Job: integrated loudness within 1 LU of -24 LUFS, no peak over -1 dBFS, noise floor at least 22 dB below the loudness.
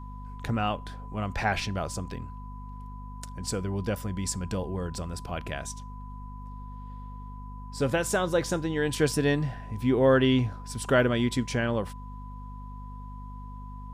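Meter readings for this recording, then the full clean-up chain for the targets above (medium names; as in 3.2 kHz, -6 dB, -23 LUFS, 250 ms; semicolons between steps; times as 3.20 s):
hum 50 Hz; highest harmonic 250 Hz; hum level -39 dBFS; steady tone 1 kHz; tone level -46 dBFS; loudness -28.5 LUFS; peak level -10.0 dBFS; loudness target -24.0 LUFS
-> de-hum 50 Hz, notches 5; band-stop 1 kHz, Q 30; trim +4.5 dB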